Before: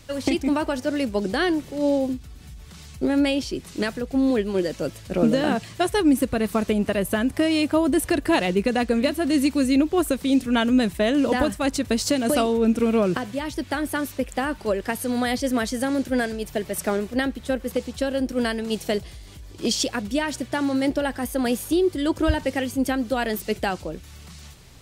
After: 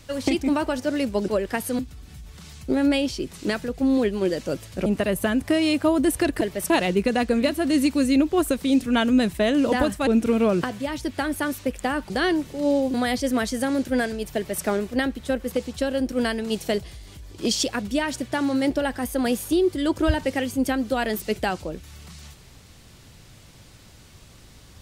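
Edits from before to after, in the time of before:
0:01.28–0:02.12: swap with 0:14.63–0:15.14
0:05.19–0:06.75: remove
0:11.67–0:12.60: remove
0:16.55–0:16.84: duplicate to 0:08.30

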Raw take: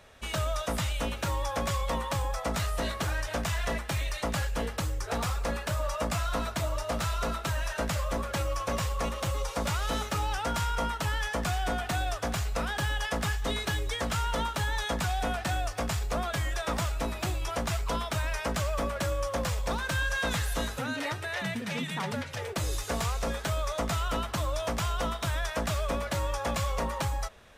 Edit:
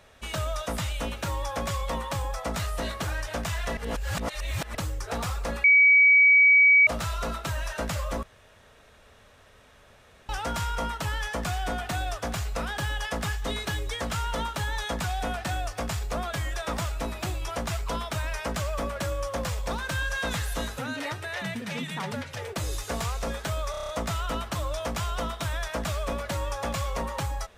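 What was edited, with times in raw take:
0:03.77–0:04.75: reverse
0:05.64–0:06.87: beep over 2,270 Hz −13.5 dBFS
0:08.23–0:10.29: fill with room tone
0:23.71: stutter 0.03 s, 7 plays

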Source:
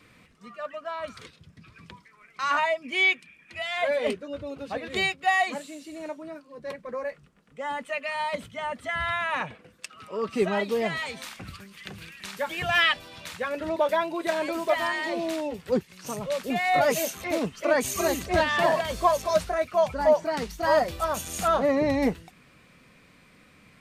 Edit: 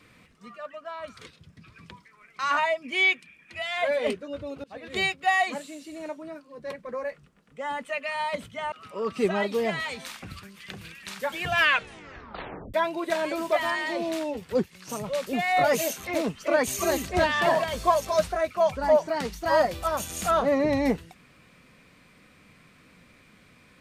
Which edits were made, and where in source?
0:00.58–0:01.21: clip gain −3.5 dB
0:04.64–0:05.03: fade in, from −23.5 dB
0:08.72–0:09.89: remove
0:12.73: tape stop 1.18 s

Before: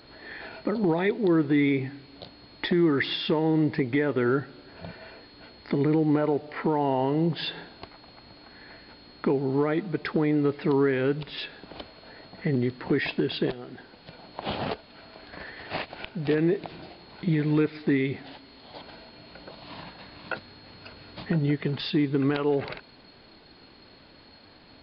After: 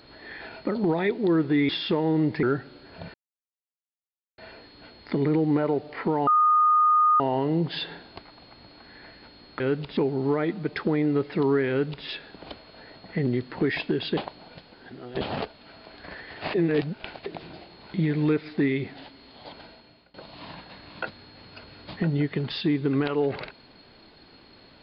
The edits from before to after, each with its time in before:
0:01.69–0:03.08: remove
0:03.82–0:04.26: remove
0:04.97: splice in silence 1.24 s
0:06.86: insert tone 1,230 Hz −16 dBFS 0.93 s
0:10.98–0:11.35: duplicate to 0:09.26
0:13.46–0:14.50: reverse
0:15.83–0:16.55: reverse
0:18.88–0:19.43: fade out, to −23.5 dB

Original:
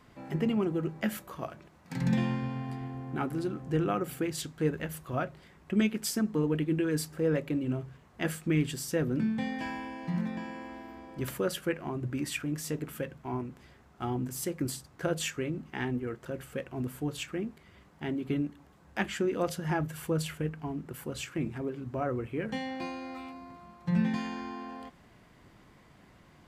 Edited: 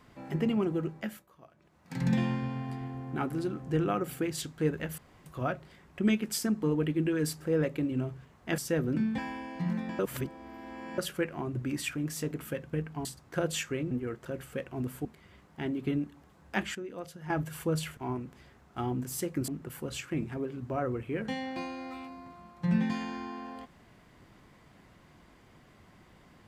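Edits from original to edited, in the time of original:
0:00.78–0:02.03: duck −18 dB, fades 0.49 s
0:04.98: splice in room tone 0.28 s
0:08.30–0:08.81: remove
0:09.41–0:09.66: remove
0:10.47–0:11.46: reverse
0:13.21–0:14.72: swap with 0:20.40–0:20.72
0:15.58–0:15.91: remove
0:17.05–0:17.48: remove
0:19.18–0:19.73: clip gain −11 dB

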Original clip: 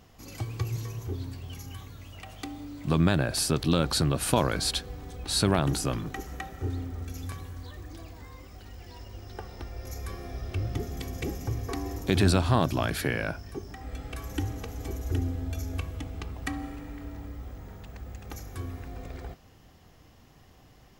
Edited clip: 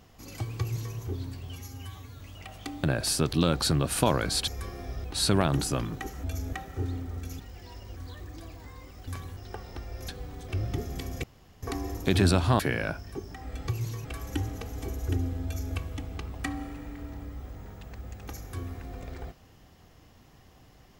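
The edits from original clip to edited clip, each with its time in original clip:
0:00.59–0:00.96: duplicate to 0:14.07
0:01.52–0:01.97: time-stretch 1.5×
0:02.61–0:03.14: remove
0:04.78–0:05.18: swap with 0:09.93–0:10.50
0:07.24–0:07.53: swap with 0:08.64–0:09.21
0:11.25–0:11.64: fill with room tone
0:12.61–0:12.99: remove
0:15.47–0:15.76: duplicate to 0:06.37

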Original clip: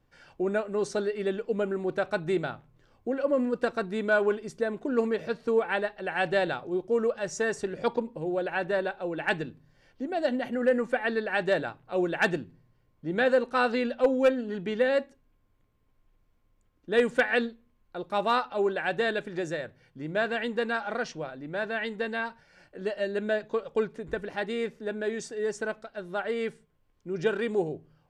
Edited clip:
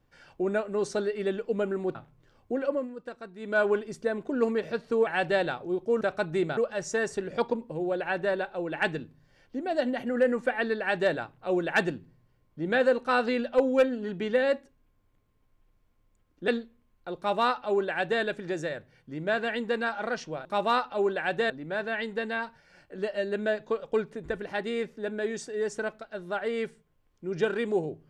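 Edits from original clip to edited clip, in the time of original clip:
0:01.95–0:02.51: move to 0:07.03
0:03.22–0:04.17: duck −12.5 dB, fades 0.22 s
0:05.63–0:06.09: remove
0:16.94–0:17.36: remove
0:18.05–0:19.10: duplicate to 0:21.33

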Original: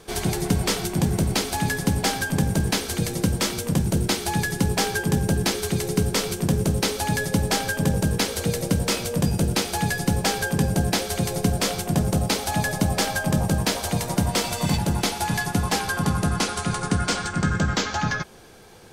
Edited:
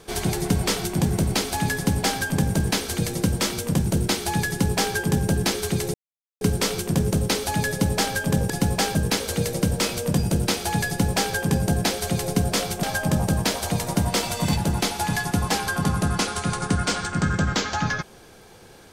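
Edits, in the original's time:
0:05.94: splice in silence 0.47 s
0:09.96–0:10.41: duplicate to 0:08.03
0:11.91–0:13.04: remove

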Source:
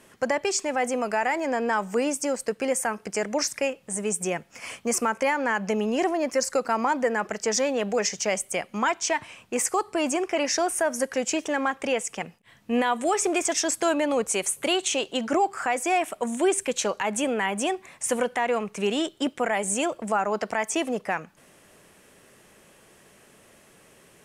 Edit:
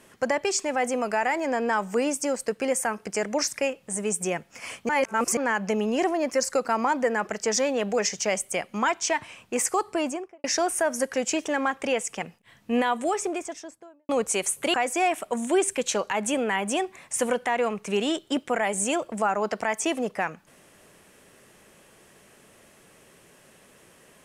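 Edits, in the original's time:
0:04.89–0:05.37: reverse
0:09.90–0:10.44: fade out and dull
0:12.74–0:14.09: fade out and dull
0:14.74–0:15.64: remove

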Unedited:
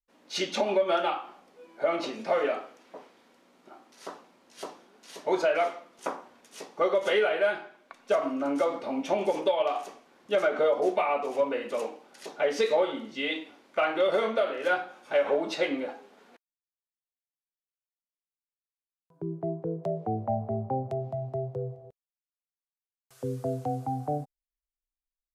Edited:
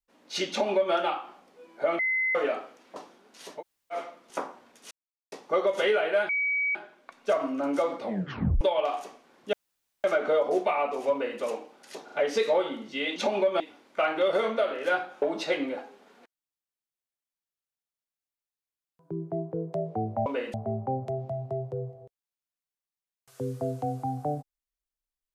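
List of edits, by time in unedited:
0:00.50–0:00.94: duplicate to 0:13.39
0:01.99–0:02.35: beep over 2,050 Hz −23.5 dBFS
0:02.96–0:04.65: remove
0:05.27–0:05.64: fill with room tone, crossfade 0.10 s
0:06.60: splice in silence 0.41 s
0:07.57: insert tone 2,270 Hz −24 dBFS 0.46 s
0:08.84: tape stop 0.59 s
0:10.35: splice in room tone 0.51 s
0:11.43–0:11.71: duplicate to 0:20.37
0:12.35: stutter 0.04 s, 3 plays
0:15.01–0:15.33: remove

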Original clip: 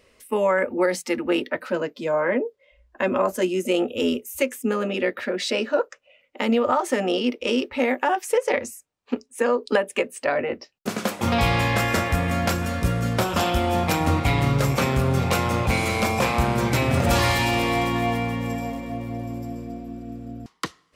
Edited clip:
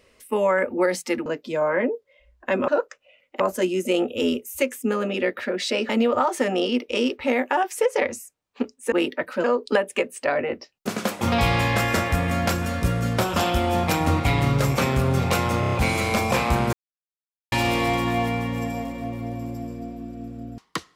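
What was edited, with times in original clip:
0:01.26–0:01.78: move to 0:09.44
0:05.69–0:06.41: move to 0:03.20
0:15.60: stutter 0.03 s, 5 plays
0:16.61–0:17.40: silence

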